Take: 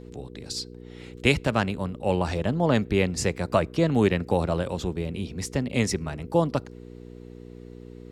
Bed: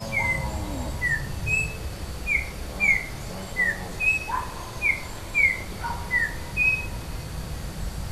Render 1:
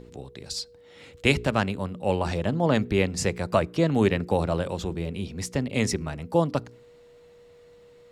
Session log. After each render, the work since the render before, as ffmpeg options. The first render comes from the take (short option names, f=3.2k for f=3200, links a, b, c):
-af "bandreject=f=60:t=h:w=4,bandreject=f=120:t=h:w=4,bandreject=f=180:t=h:w=4,bandreject=f=240:t=h:w=4,bandreject=f=300:t=h:w=4,bandreject=f=360:t=h:w=4,bandreject=f=420:t=h:w=4"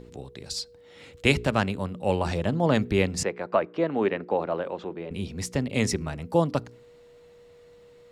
-filter_complex "[0:a]asettb=1/sr,asplit=3[a][b][c];[a]atrim=end=3.234[d];[b]atrim=start=3.23:end=5.11,asetpts=PTS-STARTPTS,afade=t=in:d=0.004:c=qsin,afade=t=out:st=1.876:d=0.004:c=qsin,highpass=310,lowpass=2.1k[e];[c]atrim=start=5.106[f];[d][e]acrossfade=d=0.004:c1=hsin:c2=qsin[g];[g][f]acrossfade=d=0.004:c1=qsin:c2=hsin"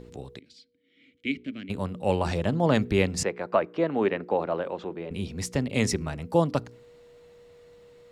-filter_complex "[0:a]asplit=3[a][b][c];[a]afade=t=out:st=0.38:d=0.02[d];[b]asplit=3[e][f][g];[e]bandpass=f=270:t=q:w=8,volume=0dB[h];[f]bandpass=f=2.29k:t=q:w=8,volume=-6dB[i];[g]bandpass=f=3.01k:t=q:w=8,volume=-9dB[j];[h][i][j]amix=inputs=3:normalize=0,afade=t=in:st=0.38:d=0.02,afade=t=out:st=1.69:d=0.02[k];[c]afade=t=in:st=1.69:d=0.02[l];[d][k][l]amix=inputs=3:normalize=0"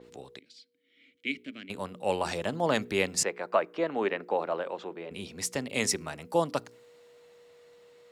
-af "highpass=f=550:p=1,adynamicequalizer=threshold=0.00447:dfrequency=6300:dqfactor=0.7:tfrequency=6300:tqfactor=0.7:attack=5:release=100:ratio=0.375:range=3:mode=boostabove:tftype=highshelf"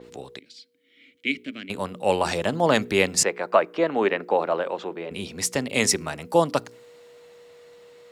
-af "volume=7dB"